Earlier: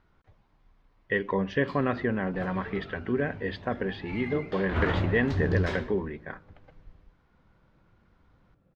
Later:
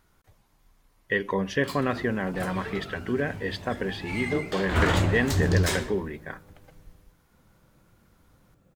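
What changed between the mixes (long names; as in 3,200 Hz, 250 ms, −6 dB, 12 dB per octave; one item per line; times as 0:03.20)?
background +4.0 dB
master: remove high-frequency loss of the air 250 metres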